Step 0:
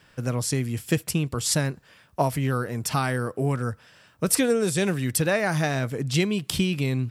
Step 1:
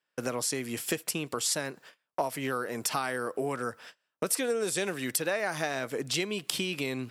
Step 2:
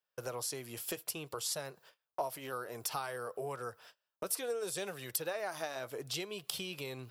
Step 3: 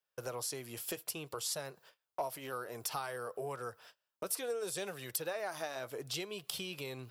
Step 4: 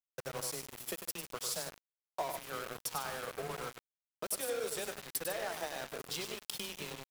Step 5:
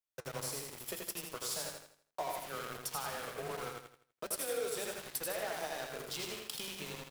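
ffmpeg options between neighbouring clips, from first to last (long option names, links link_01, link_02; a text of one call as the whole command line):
ffmpeg -i in.wav -af "agate=range=-32dB:threshold=-48dB:ratio=16:detection=peak,highpass=350,acompressor=threshold=-37dB:ratio=3,volume=6.5dB" out.wav
ffmpeg -i in.wav -af "equalizer=frequency=250:width_type=o:width=1:gain=-12,equalizer=frequency=2000:width_type=o:width=1:gain=-8,equalizer=frequency=8000:width_type=o:width=1:gain=-7,flanger=delay=1.4:depth=2.2:regen=-68:speed=0.61:shape=triangular,highshelf=frequency=11000:gain=7.5" out.wav
ffmpeg -i in.wav -af "aeval=exprs='0.141*(cos(1*acos(clip(val(0)/0.141,-1,1)))-cos(1*PI/2))+0.01*(cos(5*acos(clip(val(0)/0.141,-1,1)))-cos(5*PI/2))':channel_layout=same,volume=-3dB" out.wav
ffmpeg -i in.wav -filter_complex "[0:a]asplit=2[link_01][link_02];[link_02]aecho=0:1:99.13|148.7:0.501|0.282[link_03];[link_01][link_03]amix=inputs=2:normalize=0,afreqshift=13,aeval=exprs='val(0)*gte(abs(val(0)),0.0119)':channel_layout=same" out.wav
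ffmpeg -i in.wav -filter_complex "[0:a]flanger=delay=6.3:depth=3.2:regen=-72:speed=0.88:shape=triangular,asplit=2[link_01][link_02];[link_02]aecho=0:1:82|164|246|328|410:0.596|0.214|0.0772|0.0278|0.01[link_03];[link_01][link_03]amix=inputs=2:normalize=0,volume=2.5dB" out.wav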